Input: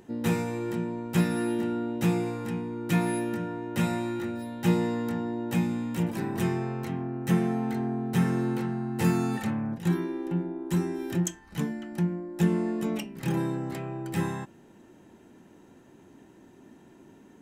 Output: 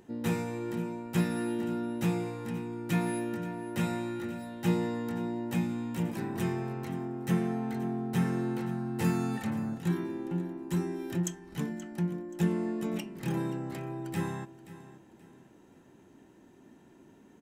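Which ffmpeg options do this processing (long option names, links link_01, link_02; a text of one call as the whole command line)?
ffmpeg -i in.wav -af "aecho=1:1:528|1056|1584:0.158|0.0523|0.0173,volume=-4dB" out.wav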